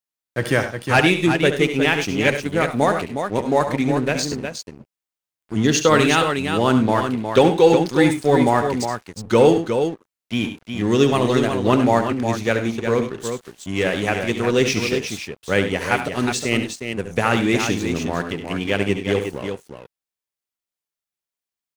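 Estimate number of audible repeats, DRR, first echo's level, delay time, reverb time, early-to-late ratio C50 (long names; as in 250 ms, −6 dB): 3, no reverb audible, −10.0 dB, 70 ms, no reverb audible, no reverb audible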